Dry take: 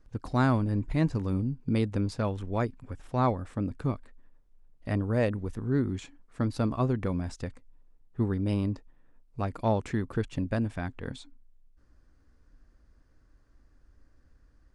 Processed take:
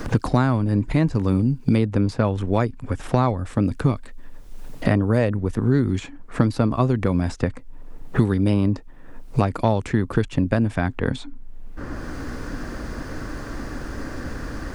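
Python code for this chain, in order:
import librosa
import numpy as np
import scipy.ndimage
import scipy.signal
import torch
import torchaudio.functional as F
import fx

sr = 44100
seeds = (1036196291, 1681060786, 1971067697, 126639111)

y = fx.band_squash(x, sr, depth_pct=100)
y = y * 10.0 ** (8.5 / 20.0)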